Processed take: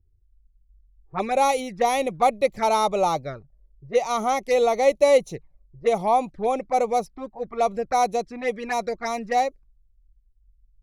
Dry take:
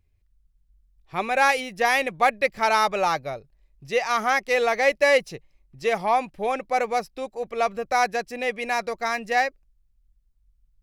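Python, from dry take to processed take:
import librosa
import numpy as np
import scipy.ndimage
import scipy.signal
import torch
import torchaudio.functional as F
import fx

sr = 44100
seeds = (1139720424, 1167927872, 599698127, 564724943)

y = fx.env_lowpass(x, sr, base_hz=350.0, full_db=-21.0)
y = fx.peak_eq(y, sr, hz=2800.0, db=-11.5, octaves=0.64)
y = fx.env_flanger(y, sr, rest_ms=2.5, full_db=-22.0)
y = y * 10.0 ** (4.5 / 20.0)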